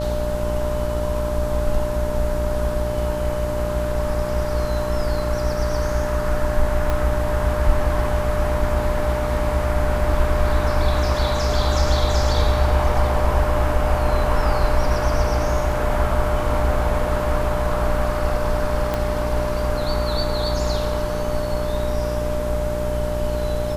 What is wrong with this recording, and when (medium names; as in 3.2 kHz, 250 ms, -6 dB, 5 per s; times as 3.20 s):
buzz 60 Hz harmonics 16 -26 dBFS
whine 600 Hz -25 dBFS
6.90 s: pop -10 dBFS
18.94 s: pop -9 dBFS